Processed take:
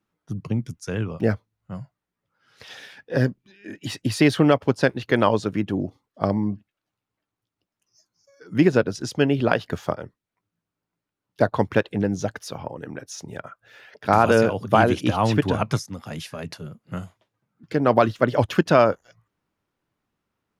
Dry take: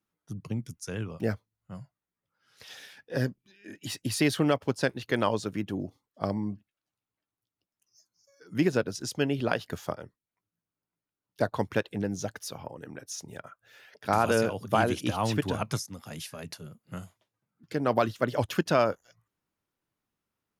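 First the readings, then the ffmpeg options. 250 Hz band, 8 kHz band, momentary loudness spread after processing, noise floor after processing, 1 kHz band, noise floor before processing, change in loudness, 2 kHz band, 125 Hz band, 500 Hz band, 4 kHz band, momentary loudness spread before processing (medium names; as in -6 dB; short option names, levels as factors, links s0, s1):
+8.0 dB, +0.5 dB, 18 LU, under -85 dBFS, +7.5 dB, under -85 dBFS, +8.0 dB, +6.5 dB, +8.0 dB, +8.0 dB, +4.0 dB, 18 LU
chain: -af "lowpass=f=3000:p=1,volume=2.51"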